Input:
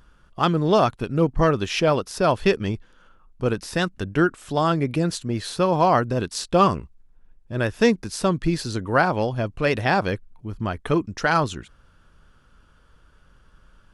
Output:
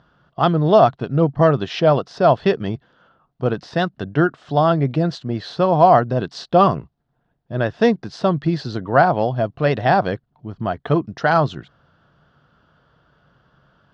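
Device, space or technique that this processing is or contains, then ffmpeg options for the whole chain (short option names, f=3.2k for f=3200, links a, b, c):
guitar cabinet: -af "highpass=110,equalizer=f=140:t=q:w=4:g=8,equalizer=f=690:t=q:w=4:g=9,equalizer=f=2.4k:t=q:w=4:g=-8,lowpass=f=4.5k:w=0.5412,lowpass=f=4.5k:w=1.3066,volume=1.5dB"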